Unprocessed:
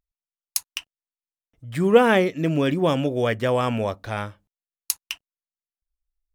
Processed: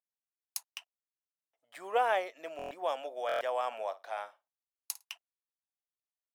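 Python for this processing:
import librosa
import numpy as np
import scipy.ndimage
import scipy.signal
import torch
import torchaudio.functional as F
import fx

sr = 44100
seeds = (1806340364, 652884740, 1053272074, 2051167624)

y = fx.ladder_highpass(x, sr, hz=610.0, resonance_pct=55)
y = fx.room_flutter(y, sr, wall_m=9.1, rt60_s=0.2, at=(3.71, 5.04), fade=0.02)
y = fx.buffer_glitch(y, sr, at_s=(2.57, 3.27), block=1024, repeats=5)
y = F.gain(torch.from_numpy(y), -3.5).numpy()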